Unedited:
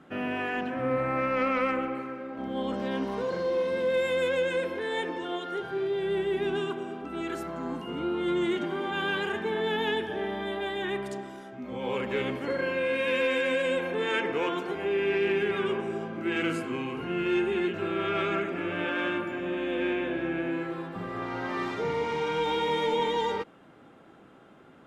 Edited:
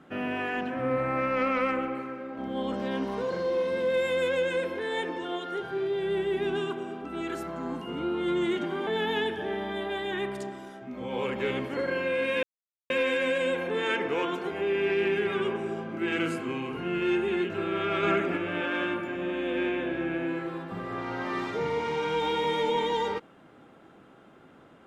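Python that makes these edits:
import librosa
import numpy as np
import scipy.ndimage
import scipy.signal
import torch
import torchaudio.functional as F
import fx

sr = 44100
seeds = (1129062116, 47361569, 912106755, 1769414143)

y = fx.edit(x, sr, fx.cut(start_s=8.87, length_s=0.71),
    fx.insert_silence(at_s=13.14, length_s=0.47),
    fx.clip_gain(start_s=18.27, length_s=0.34, db=4.0), tone=tone)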